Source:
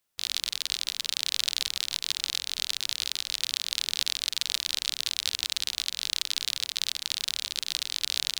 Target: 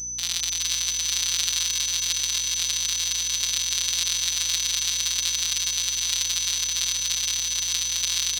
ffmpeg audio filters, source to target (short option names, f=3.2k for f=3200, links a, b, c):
-af "areverse,acompressor=mode=upward:threshold=-32dB:ratio=2.5,areverse,acrusher=bits=5:mix=0:aa=0.000001,aeval=exprs='val(0)+0.0251*sin(2*PI*6000*n/s)':c=same,afftfilt=real='hypot(re,im)*cos(PI*b)':imag='0':win_size=1024:overlap=0.75,aeval=exprs='val(0)+0.00251*(sin(2*PI*60*n/s)+sin(2*PI*2*60*n/s)/2+sin(2*PI*3*60*n/s)/3+sin(2*PI*4*60*n/s)/4+sin(2*PI*5*60*n/s)/5)':c=same,aecho=1:1:414|828|1242|1656|2070:0.473|0.199|0.0835|0.0351|0.0147,volume=5dB"